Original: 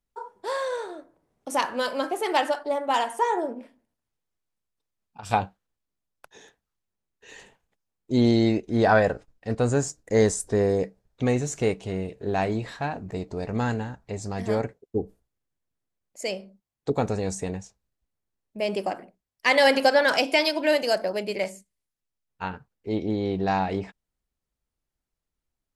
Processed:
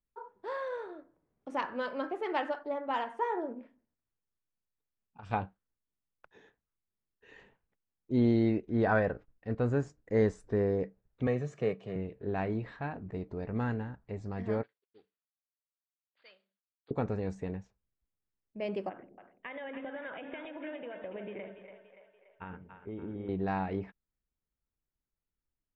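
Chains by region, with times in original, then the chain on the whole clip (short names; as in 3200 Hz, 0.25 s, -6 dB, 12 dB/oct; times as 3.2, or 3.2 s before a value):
11.27–11.96 HPF 130 Hz 24 dB/oct + comb 1.7 ms, depth 49%
14.63–16.91 CVSD 32 kbps + rippled Chebyshev low-pass 4700 Hz, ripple 3 dB + differentiator
18.89–23.29 compressor 10:1, threshold -30 dBFS + brick-wall FIR low-pass 3800 Hz + split-band echo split 480 Hz, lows 0.114 s, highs 0.287 s, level -8 dB
whole clip: LPF 2000 Hz 12 dB/oct; bell 730 Hz -5 dB 1 oct; gain -5.5 dB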